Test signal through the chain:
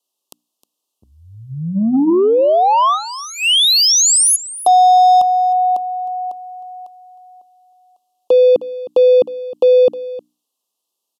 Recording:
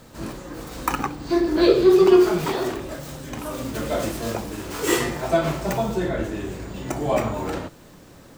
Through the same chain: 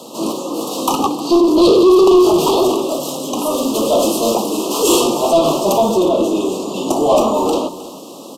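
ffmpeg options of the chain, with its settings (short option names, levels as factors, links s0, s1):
-filter_complex "[0:a]highpass=f=230:w=0.5412,highpass=f=230:w=1.3066,bandreject=f=60:t=h:w=6,bandreject=f=120:t=h:w=6,bandreject=f=180:t=h:w=6,bandreject=f=240:t=h:w=6,bandreject=f=300:t=h:w=6,acontrast=65,apsyclip=2.66,acontrast=83,asplit=2[s0][s1];[s1]aecho=0:1:311:0.15[s2];[s0][s2]amix=inputs=2:normalize=0,aresample=32000,aresample=44100,asuperstop=centerf=1800:order=12:qfactor=1.2,volume=0.473"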